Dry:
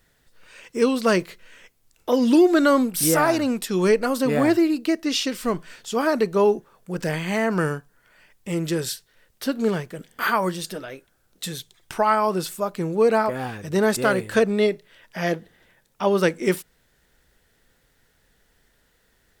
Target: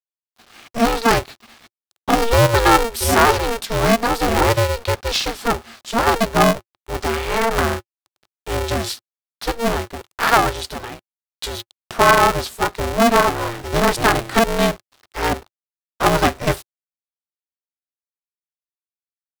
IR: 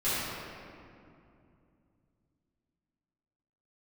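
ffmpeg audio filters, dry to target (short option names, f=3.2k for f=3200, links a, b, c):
-af "aeval=exprs='val(0)*gte(abs(val(0)),0.00562)':c=same,equalizer=f=125:t=o:w=1:g=11,equalizer=f=500:t=o:w=1:g=3,equalizer=f=1k:t=o:w=1:g=12,equalizer=f=4k:t=o:w=1:g=8,aeval=exprs='val(0)*sgn(sin(2*PI*230*n/s))':c=same,volume=-2.5dB"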